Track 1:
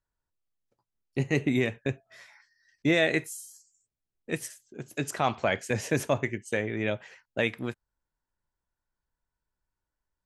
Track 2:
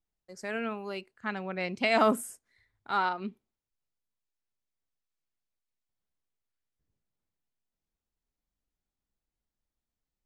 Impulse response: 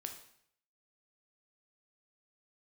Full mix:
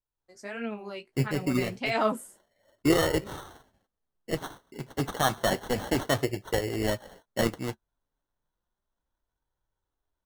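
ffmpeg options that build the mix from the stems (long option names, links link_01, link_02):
-filter_complex "[0:a]acrusher=samples=18:mix=1:aa=0.000001,volume=-6.5dB[link_01];[1:a]flanger=delay=8.6:depth=9.2:regen=25:speed=1.5:shape=sinusoidal,volume=-6.5dB,afade=type=out:start_time=2.11:duration=0.29:silence=0.334965,asplit=2[link_02][link_03];[link_03]apad=whole_len=452045[link_04];[link_01][link_04]sidechaincompress=threshold=-44dB:ratio=8:attack=24:release=541[link_05];[link_05][link_02]amix=inputs=2:normalize=0,flanger=delay=2.1:depth=5.2:regen=-50:speed=0.31:shape=sinusoidal,dynaudnorm=framelen=160:gausssize=3:maxgain=11.5dB"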